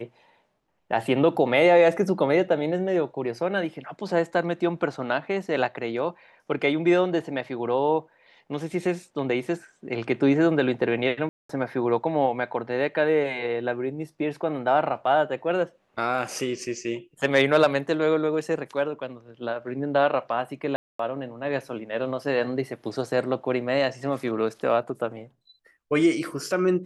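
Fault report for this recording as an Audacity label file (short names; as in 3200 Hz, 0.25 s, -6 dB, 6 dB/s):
11.290000	11.490000	gap 0.204 s
20.760000	20.990000	gap 0.234 s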